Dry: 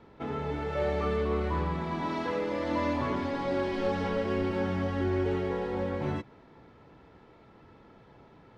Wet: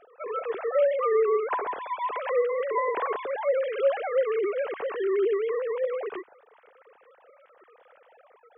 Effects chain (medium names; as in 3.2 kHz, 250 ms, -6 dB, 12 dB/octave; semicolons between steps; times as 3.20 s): formants replaced by sine waves; trim +3.5 dB